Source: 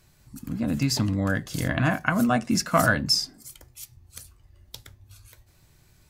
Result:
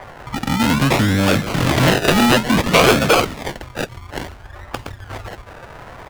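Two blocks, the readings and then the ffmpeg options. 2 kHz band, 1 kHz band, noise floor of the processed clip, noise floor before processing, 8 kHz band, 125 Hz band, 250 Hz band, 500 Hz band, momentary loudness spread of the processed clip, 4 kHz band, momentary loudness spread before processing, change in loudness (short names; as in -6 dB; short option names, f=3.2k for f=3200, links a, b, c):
+8.5 dB, +10.0 dB, -40 dBFS, -59 dBFS, +6.5 dB, +8.0 dB, +8.5 dB, +13.0 dB, 20 LU, +8.5 dB, 21 LU, +9.0 dB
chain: -filter_complex "[0:a]adynamicequalizer=threshold=0.0112:dfrequency=1400:dqfactor=2.8:tfrequency=1400:tqfactor=2.8:attack=5:release=100:ratio=0.375:range=3.5:mode=boostabove:tftype=bell,asplit=2[a][b];[b]adelay=139,lowpass=f=3.2k:p=1,volume=-17dB,asplit=2[c][d];[d]adelay=139,lowpass=f=3.2k:p=1,volume=0.45,asplit=2[e][f];[f]adelay=139,lowpass=f=3.2k:p=1,volume=0.45,asplit=2[g][h];[h]adelay=139,lowpass=f=3.2k:p=1,volume=0.45[i];[a][c][e][g][i]amix=inputs=5:normalize=0,asplit=2[j][k];[k]acompressor=threshold=-37dB:ratio=6,volume=3dB[l];[j][l]amix=inputs=2:normalize=0,acrusher=samples=32:mix=1:aa=0.000001:lfo=1:lforange=19.2:lforate=0.58,acrossover=split=550|1700[m][n][o];[n]acompressor=mode=upward:threshold=-39dB:ratio=2.5[p];[m][p][o]amix=inputs=3:normalize=0,asoftclip=type=tanh:threshold=-19dB,equalizer=f=2.4k:w=0.34:g=7,volume=8.5dB"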